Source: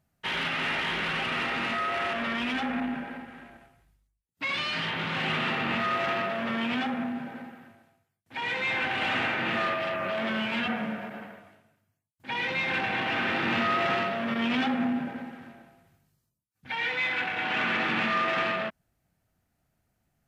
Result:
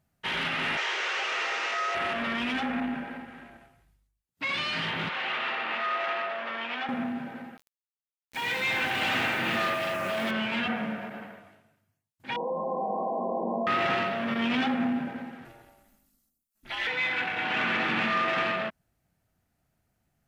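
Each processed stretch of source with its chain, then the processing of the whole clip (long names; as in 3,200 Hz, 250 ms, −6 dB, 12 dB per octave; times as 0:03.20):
0:00.77–0:01.95: spike at every zero crossing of −28 dBFS + elliptic band-pass filter 420–6,000 Hz
0:05.09–0:06.89: high-pass filter 580 Hz + high-frequency loss of the air 120 metres
0:07.57–0:10.31: bass and treble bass +1 dB, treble +8 dB + centre clipping without the shift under −40 dBFS
0:12.36–0:13.67: linear-phase brick-wall band-pass 180–1,100 Hz + comb filter 1.7 ms, depth 71% + envelope flattener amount 70%
0:15.45–0:16.87: high-shelf EQ 5,600 Hz +12 dB + comb filter 1.5 ms, depth 54% + ring modulation 110 Hz
whole clip: no processing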